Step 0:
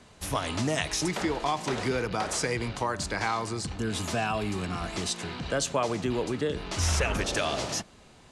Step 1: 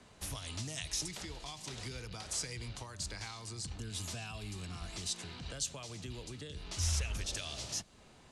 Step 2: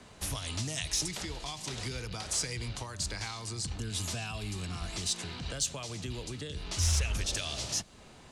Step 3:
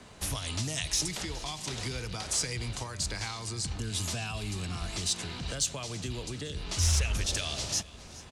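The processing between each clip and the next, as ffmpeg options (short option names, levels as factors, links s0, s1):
-filter_complex "[0:a]acrossover=split=120|3000[s0][s1][s2];[s1]acompressor=threshold=0.00631:ratio=6[s3];[s0][s3][s2]amix=inputs=3:normalize=0,volume=0.562"
-af "asoftclip=type=tanh:threshold=0.0708,volume=2"
-af "aecho=1:1:419|838|1257|1676|2095:0.106|0.0604|0.0344|0.0196|0.0112,volume=1.26"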